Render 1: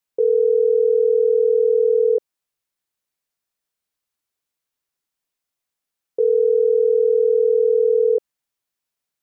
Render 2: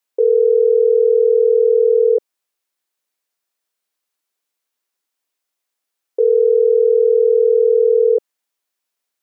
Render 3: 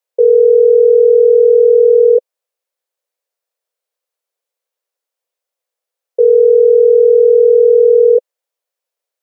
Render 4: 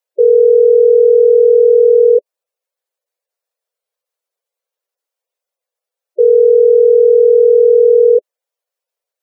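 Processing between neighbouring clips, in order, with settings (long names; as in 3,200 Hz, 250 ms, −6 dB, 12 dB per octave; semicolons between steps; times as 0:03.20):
high-pass filter 280 Hz; level +4 dB
high-pass with resonance 510 Hz, resonance Q 4.5; level −4.5 dB
gate on every frequency bin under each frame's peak −15 dB strong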